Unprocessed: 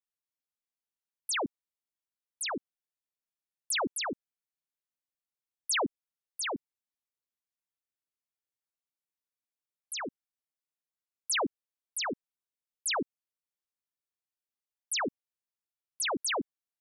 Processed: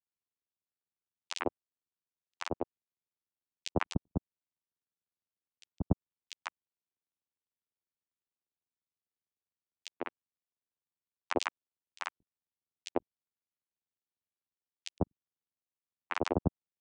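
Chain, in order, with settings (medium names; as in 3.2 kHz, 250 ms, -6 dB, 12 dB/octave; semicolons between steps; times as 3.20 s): vocoder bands 4, saw 88.6 Hz; granulator 39 ms, grains 20 per s; trim +3.5 dB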